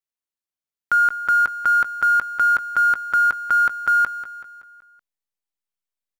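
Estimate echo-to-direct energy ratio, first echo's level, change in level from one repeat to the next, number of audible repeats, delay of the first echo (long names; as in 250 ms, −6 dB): −11.5 dB, −13.0 dB, −6.0 dB, 4, 189 ms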